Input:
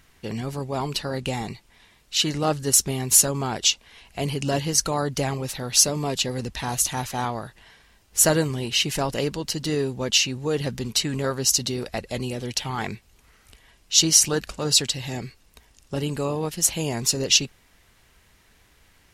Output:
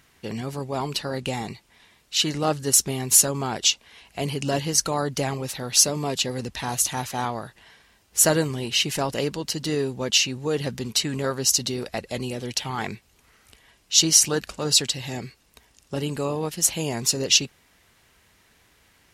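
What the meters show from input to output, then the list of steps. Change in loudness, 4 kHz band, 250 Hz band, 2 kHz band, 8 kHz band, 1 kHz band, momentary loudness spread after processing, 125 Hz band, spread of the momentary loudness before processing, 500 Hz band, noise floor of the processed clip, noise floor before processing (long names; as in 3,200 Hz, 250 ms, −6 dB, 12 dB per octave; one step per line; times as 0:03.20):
0.0 dB, 0.0 dB, −0.5 dB, 0.0 dB, 0.0 dB, 0.0 dB, 13 LU, −2.0 dB, 13 LU, 0.0 dB, −61 dBFS, −59 dBFS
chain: high-pass filter 98 Hz 6 dB per octave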